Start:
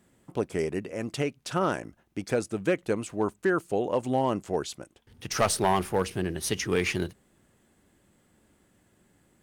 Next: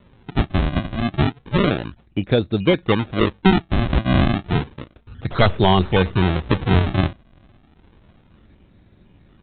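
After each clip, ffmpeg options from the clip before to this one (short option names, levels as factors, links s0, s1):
-af "aemphasis=mode=reproduction:type=bsi,aresample=8000,acrusher=samples=10:mix=1:aa=0.000001:lfo=1:lforange=16:lforate=0.31,aresample=44100,volume=2.11"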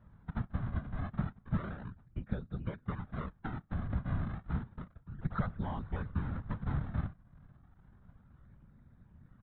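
-af "acompressor=threshold=0.0562:ratio=5,firequalizer=gain_entry='entry(150,0);entry(250,-20);entry(560,-10);entry(1400,-2);entry(2600,-21);entry(4400,-18)':delay=0.05:min_phase=1,afftfilt=real='hypot(re,im)*cos(2*PI*random(0))':imag='hypot(re,im)*sin(2*PI*random(1))':win_size=512:overlap=0.75,volume=1.12"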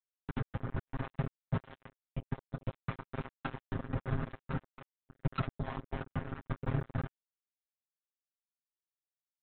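-af "acompressor=threshold=0.00355:ratio=1.5,aresample=8000,acrusher=bits=5:mix=0:aa=0.5,aresample=44100,aecho=1:1:7.5:0.89,volume=1.58"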